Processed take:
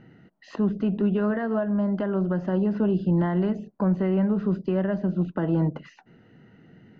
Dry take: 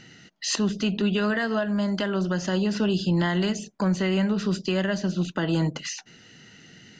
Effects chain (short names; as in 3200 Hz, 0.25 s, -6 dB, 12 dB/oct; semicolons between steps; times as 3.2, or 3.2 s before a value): LPF 1000 Hz 12 dB/oct; gain +1 dB